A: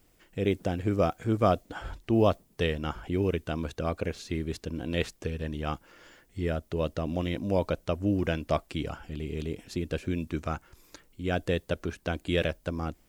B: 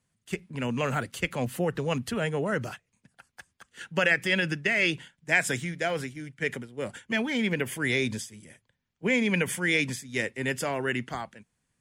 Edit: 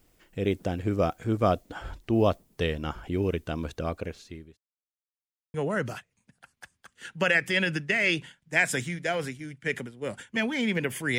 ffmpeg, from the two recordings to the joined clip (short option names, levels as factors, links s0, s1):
-filter_complex "[0:a]apad=whole_dur=11.18,atrim=end=11.18,asplit=2[s0][s1];[s0]atrim=end=4.58,asetpts=PTS-STARTPTS,afade=t=out:st=3.81:d=0.77[s2];[s1]atrim=start=4.58:end=5.54,asetpts=PTS-STARTPTS,volume=0[s3];[1:a]atrim=start=2.3:end=7.94,asetpts=PTS-STARTPTS,afade=t=in:d=0.004:c=hsin[s4];[s2][s3][s4]concat=n=3:v=0:a=1"